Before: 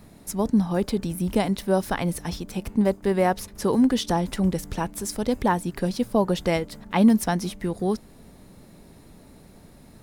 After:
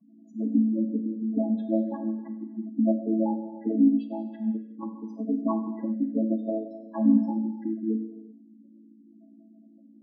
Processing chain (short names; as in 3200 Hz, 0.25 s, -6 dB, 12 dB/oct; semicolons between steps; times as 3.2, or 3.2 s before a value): chord vocoder major triad, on A3; 6.37–7.16 HPF 190 Hz 6 dB/oct; spectral gate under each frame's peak -10 dB strong; non-linear reverb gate 0.42 s falling, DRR 6 dB; 3.84–4.83 upward expander 1.5:1, over -24 dBFS; gain -3 dB